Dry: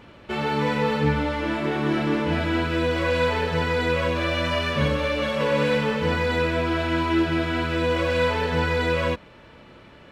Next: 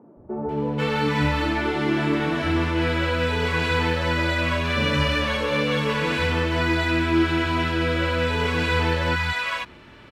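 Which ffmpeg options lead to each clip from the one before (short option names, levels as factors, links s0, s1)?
-filter_complex "[0:a]equalizer=f=520:w=4.5:g=-6.5,acrossover=split=170|770[s0][s1][s2];[s0]adelay=170[s3];[s2]adelay=490[s4];[s3][s1][s4]amix=inputs=3:normalize=0,volume=1.41"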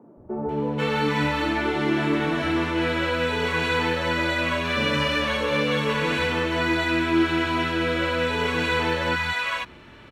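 -filter_complex "[0:a]bandreject=f=4900:w=13,acrossover=split=160|1400[s0][s1][s2];[s0]acompressor=threshold=0.0158:ratio=6[s3];[s3][s1][s2]amix=inputs=3:normalize=0"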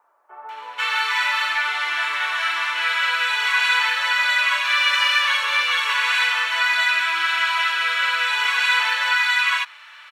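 -af "highpass=f=1100:w=0.5412,highpass=f=1100:w=1.3066,volume=2.51"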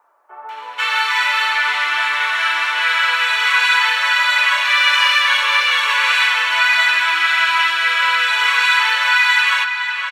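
-filter_complex "[0:a]bandreject=f=50:t=h:w=6,bandreject=f=100:t=h:w=6,bandreject=f=150:t=h:w=6,bandreject=f=200:t=h:w=6,bandreject=f=250:t=h:w=6,asplit=2[s0][s1];[s1]adelay=515,lowpass=f=3600:p=1,volume=0.501,asplit=2[s2][s3];[s3]adelay=515,lowpass=f=3600:p=1,volume=0.4,asplit=2[s4][s5];[s5]adelay=515,lowpass=f=3600:p=1,volume=0.4,asplit=2[s6][s7];[s7]adelay=515,lowpass=f=3600:p=1,volume=0.4,asplit=2[s8][s9];[s9]adelay=515,lowpass=f=3600:p=1,volume=0.4[s10];[s0][s2][s4][s6][s8][s10]amix=inputs=6:normalize=0,volume=1.58"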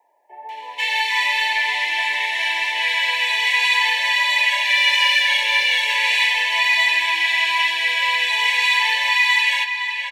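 -af "asuperstop=centerf=1300:order=20:qfactor=1.9,volume=0.841"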